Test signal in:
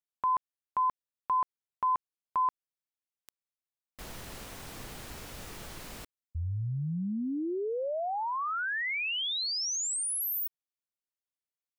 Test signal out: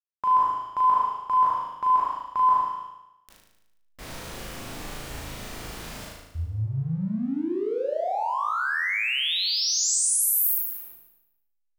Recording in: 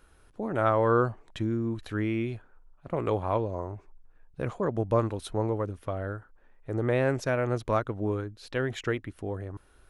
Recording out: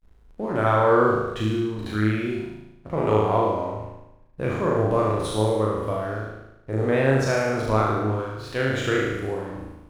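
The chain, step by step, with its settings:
peak hold with a decay on every bin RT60 0.81 s
slack as between gear wheels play −48 dBFS
flutter between parallel walls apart 6.4 metres, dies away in 0.88 s
level +1.5 dB

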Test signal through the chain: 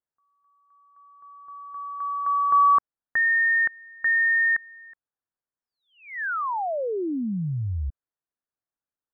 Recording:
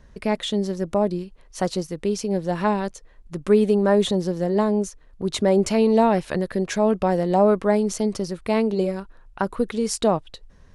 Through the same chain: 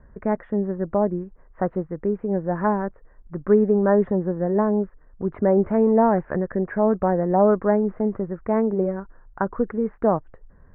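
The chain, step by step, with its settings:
Butterworth low-pass 1,800 Hz 48 dB per octave

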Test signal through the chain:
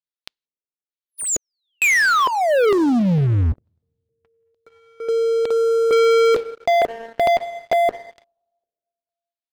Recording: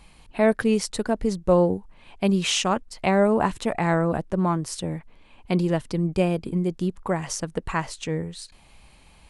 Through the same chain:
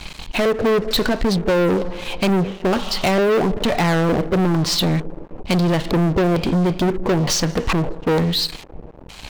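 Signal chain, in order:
Chebyshev low-pass filter 9,400 Hz, order 6
coupled-rooms reverb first 0.25 s, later 2.1 s, from −18 dB, DRR 14 dB
downward compressor 12 to 1, threshold −24 dBFS
auto-filter low-pass square 1.1 Hz 450–4,100 Hz
leveller curve on the samples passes 5

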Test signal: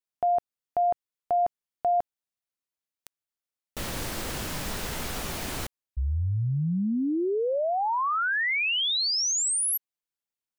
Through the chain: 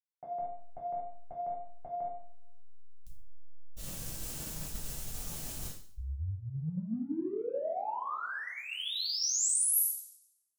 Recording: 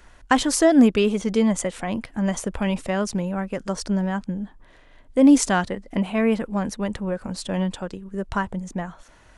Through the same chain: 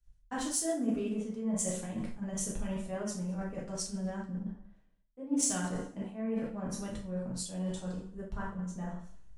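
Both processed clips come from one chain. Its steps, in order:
in parallel at −11 dB: slack as between gear wheels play −18.5 dBFS
on the sum: drawn EQ curve 160 Hz 0 dB, 2,100 Hz −8 dB, 6,400 Hz +2 dB
coupled-rooms reverb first 0.65 s, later 2.1 s, from −22 dB, DRR −4.5 dB
dynamic equaliser 4,200 Hz, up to −4 dB, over −38 dBFS, Q 1.1
reversed playback
downward compressor 5 to 1, threshold −25 dBFS
reversed playback
multiband upward and downward expander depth 100%
level −8.5 dB

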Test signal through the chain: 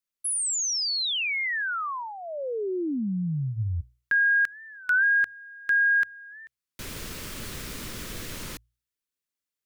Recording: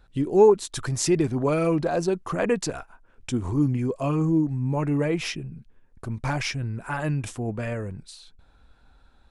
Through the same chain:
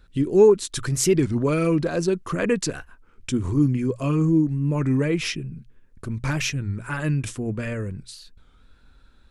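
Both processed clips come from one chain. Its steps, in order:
parametric band 770 Hz −12 dB 0.71 octaves
mains-hum notches 60/120 Hz
wow of a warped record 33 1/3 rpm, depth 160 cents
level +3.5 dB

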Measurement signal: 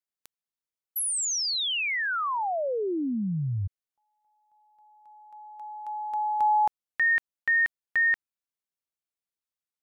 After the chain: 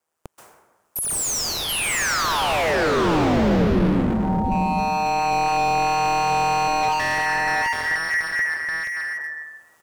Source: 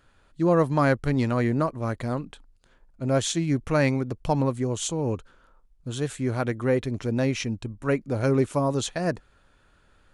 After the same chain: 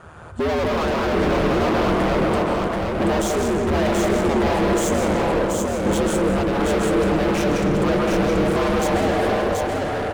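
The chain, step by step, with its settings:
camcorder AGC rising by 10 dB per second
ring modulation 79 Hz
dense smooth reverb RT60 1.3 s, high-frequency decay 0.5×, pre-delay 120 ms, DRR 6 dB
mid-hump overdrive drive 31 dB, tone 1,300 Hz, clips at −7.5 dBFS
in parallel at −3 dB: brickwall limiter −16.5 dBFS
on the sum: octave-band graphic EQ 250/2,000/4,000/8,000 Hz −5/−6/−10/+4 dB
hard clipping −22.5 dBFS
low-shelf EQ 440 Hz +5.5 dB
on a send: single-tap delay 731 ms −3 dB

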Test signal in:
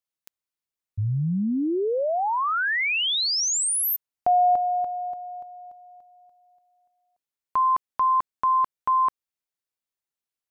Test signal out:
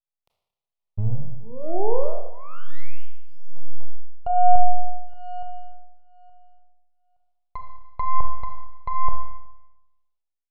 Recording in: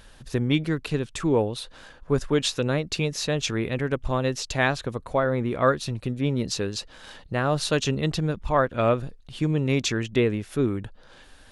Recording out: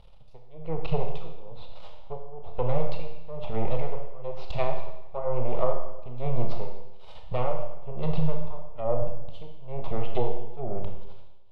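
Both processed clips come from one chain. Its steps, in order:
half-wave rectification
high-shelf EQ 5,700 Hz +10 dB
automatic gain control gain up to 8 dB
treble cut that deepens with the level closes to 840 Hz, closed at −15 dBFS
phaser with its sweep stopped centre 680 Hz, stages 4
amplitude tremolo 1.1 Hz, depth 99%
high-frequency loss of the air 400 metres
four-comb reverb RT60 0.93 s, combs from 25 ms, DRR 3 dB
level +1.5 dB

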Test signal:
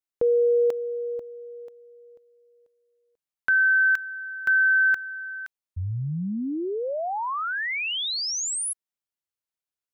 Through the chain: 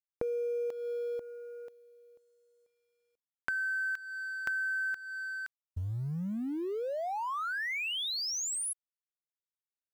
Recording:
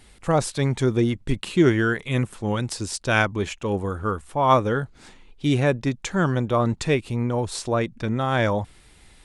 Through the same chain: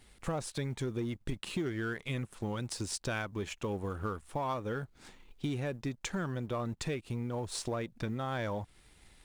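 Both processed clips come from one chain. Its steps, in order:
mu-law and A-law mismatch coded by A
in parallel at −11.5 dB: wave folding −19 dBFS
on the sum: downward compressor 6 to 1, threshold −30 dBFS
level −3 dB

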